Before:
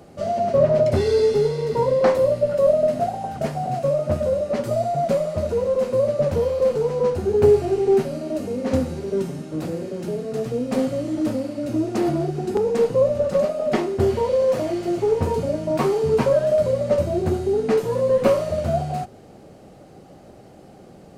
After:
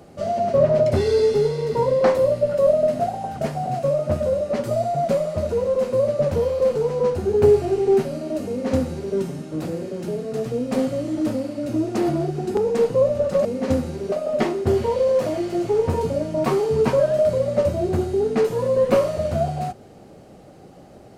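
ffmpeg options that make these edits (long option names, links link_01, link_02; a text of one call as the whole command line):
ffmpeg -i in.wav -filter_complex "[0:a]asplit=3[link_01][link_02][link_03];[link_01]atrim=end=13.452[link_04];[link_02]atrim=start=8.478:end=9.152[link_05];[link_03]atrim=start=13.448[link_06];[link_04][link_05]acrossfade=duration=0.004:curve1=hsin:curve2=hsin[link_07];[link_07][link_06]acrossfade=duration=0.004:curve1=hsin:curve2=hsin" out.wav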